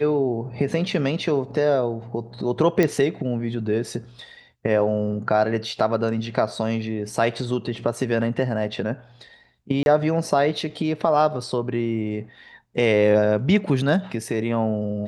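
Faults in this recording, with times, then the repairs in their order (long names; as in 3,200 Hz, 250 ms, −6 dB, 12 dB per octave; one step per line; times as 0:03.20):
0:02.83: click −8 dBFS
0:09.83–0:09.86: drop-out 31 ms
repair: click removal
repair the gap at 0:09.83, 31 ms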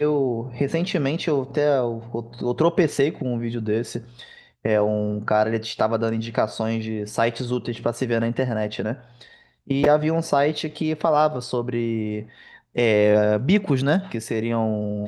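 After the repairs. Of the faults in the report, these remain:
none of them is left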